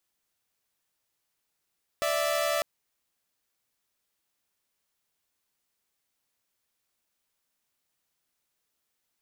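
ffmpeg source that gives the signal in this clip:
-f lavfi -i "aevalsrc='0.0531*((2*mod(587.33*t,1)-1)+(2*mod(659.26*t,1)-1))':d=0.6:s=44100"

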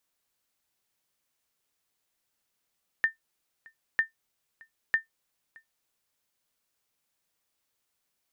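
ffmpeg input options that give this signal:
-f lavfi -i "aevalsrc='0.178*(sin(2*PI*1800*mod(t,0.95))*exp(-6.91*mod(t,0.95)/0.13)+0.0447*sin(2*PI*1800*max(mod(t,0.95)-0.62,0))*exp(-6.91*max(mod(t,0.95)-0.62,0)/0.13))':d=2.85:s=44100"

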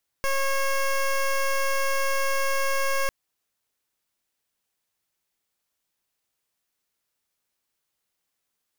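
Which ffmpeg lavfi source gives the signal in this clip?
-f lavfi -i "aevalsrc='0.0668*(2*lt(mod(545*t,1),0.14)-1)':d=2.85:s=44100"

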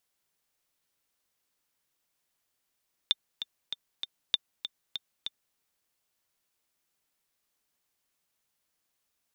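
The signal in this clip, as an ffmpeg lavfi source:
-f lavfi -i "aevalsrc='pow(10,(-10-10.5*gte(mod(t,4*60/195),60/195))/20)*sin(2*PI*3590*mod(t,60/195))*exp(-6.91*mod(t,60/195)/0.03)':d=2.46:s=44100"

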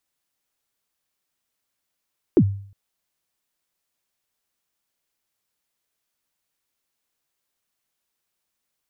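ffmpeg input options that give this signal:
-f lavfi -i "aevalsrc='0.398*pow(10,-3*t/0.53)*sin(2*PI*(420*0.064/log(99/420)*(exp(log(99/420)*min(t,0.064)/0.064)-1)+99*max(t-0.064,0)))':d=0.36:s=44100"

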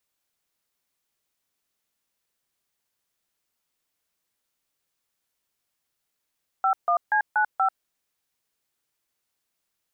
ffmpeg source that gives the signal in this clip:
-f lavfi -i "aevalsrc='0.0891*clip(min(mod(t,0.239),0.091-mod(t,0.239))/0.002,0,1)*(eq(floor(t/0.239),0)*(sin(2*PI*770*mod(t,0.239))+sin(2*PI*1336*mod(t,0.239)))+eq(floor(t/0.239),1)*(sin(2*PI*697*mod(t,0.239))+sin(2*PI*1209*mod(t,0.239)))+eq(floor(t/0.239),2)*(sin(2*PI*852*mod(t,0.239))+sin(2*PI*1633*mod(t,0.239)))+eq(floor(t/0.239),3)*(sin(2*PI*852*mod(t,0.239))+sin(2*PI*1477*mod(t,0.239)))+eq(floor(t/0.239),4)*(sin(2*PI*770*mod(t,0.239))+sin(2*PI*1336*mod(t,0.239))))':d=1.195:s=44100"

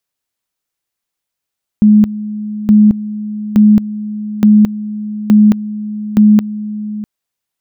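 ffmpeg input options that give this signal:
-f lavfi -i "aevalsrc='pow(10,(-3-15.5*gte(mod(t,0.87),0.22))/20)*sin(2*PI*211*t)':d=5.22:s=44100"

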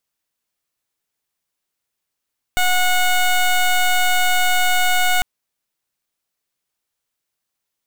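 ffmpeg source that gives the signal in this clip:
-f lavfi -i "aevalsrc='0.168*(2*lt(mod(730*t,1),0.14)-1)':d=2.65:s=44100"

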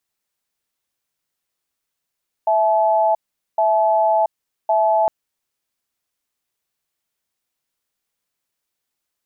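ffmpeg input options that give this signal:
-f lavfi -i "aevalsrc='0.158*(sin(2*PI*658*t)+sin(2*PI*860*t))*clip(min(mod(t,1.11),0.68-mod(t,1.11))/0.005,0,1)':d=2.61:s=44100"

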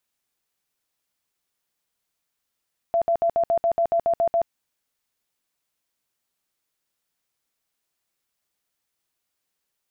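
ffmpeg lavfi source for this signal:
-f lavfi -i "aevalsrc='0.141*sin(2*PI*676*mod(t,0.14))*lt(mod(t,0.14),52/676)':d=1.54:s=44100"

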